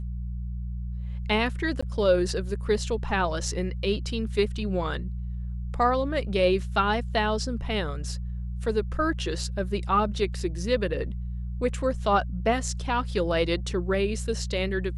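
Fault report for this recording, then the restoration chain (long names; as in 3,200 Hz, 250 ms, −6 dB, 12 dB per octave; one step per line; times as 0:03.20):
mains hum 60 Hz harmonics 3 −32 dBFS
0:01.81–0:01.82: drop-out 15 ms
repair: hum removal 60 Hz, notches 3
repair the gap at 0:01.81, 15 ms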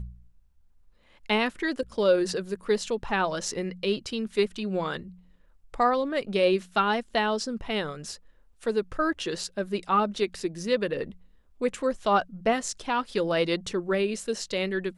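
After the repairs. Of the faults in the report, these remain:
none of them is left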